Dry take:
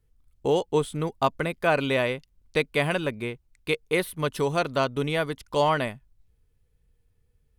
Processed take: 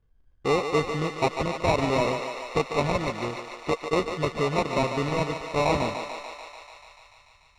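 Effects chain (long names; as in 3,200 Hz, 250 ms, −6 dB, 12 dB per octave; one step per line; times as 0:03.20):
sample-rate reduction 1,600 Hz, jitter 0%
high-frequency loss of the air 110 metres
on a send: feedback echo with a high-pass in the loop 146 ms, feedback 79%, high-pass 410 Hz, level −6.5 dB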